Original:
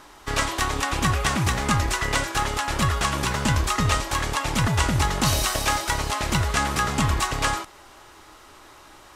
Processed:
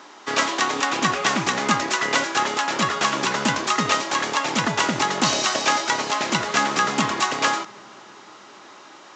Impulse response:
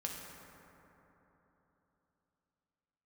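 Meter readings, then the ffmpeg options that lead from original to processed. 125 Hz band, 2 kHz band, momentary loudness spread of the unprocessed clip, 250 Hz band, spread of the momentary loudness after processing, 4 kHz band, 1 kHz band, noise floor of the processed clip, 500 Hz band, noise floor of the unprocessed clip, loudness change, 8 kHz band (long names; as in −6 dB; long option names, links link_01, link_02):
−10.5 dB, +3.5 dB, 3 LU, +1.5 dB, 3 LU, +3.5 dB, +3.5 dB, −45 dBFS, +3.5 dB, −49 dBFS, +2.0 dB, +1.5 dB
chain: -filter_complex "[0:a]highpass=frequency=200:width=0.5412,highpass=frequency=200:width=1.3066,asplit=2[link_01][link_02];[1:a]atrim=start_sample=2205,asetrate=33075,aresample=44100[link_03];[link_02][link_03]afir=irnorm=-1:irlink=0,volume=-20.5dB[link_04];[link_01][link_04]amix=inputs=2:normalize=0,aresample=16000,aresample=44100,volume=3dB"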